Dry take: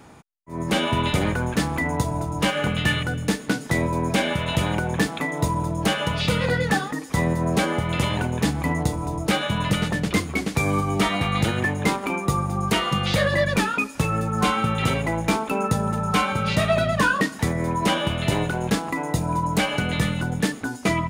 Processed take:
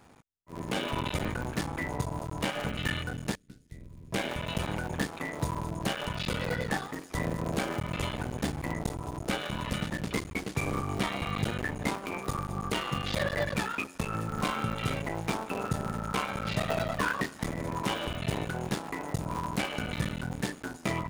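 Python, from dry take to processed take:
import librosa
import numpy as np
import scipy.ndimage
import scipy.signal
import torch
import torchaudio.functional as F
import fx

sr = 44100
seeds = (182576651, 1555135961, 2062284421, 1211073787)

y = fx.cycle_switch(x, sr, every=3, mode='muted')
y = fx.tone_stack(y, sr, knobs='10-0-1', at=(3.35, 4.12))
y = y * 10.0 ** (-8.0 / 20.0)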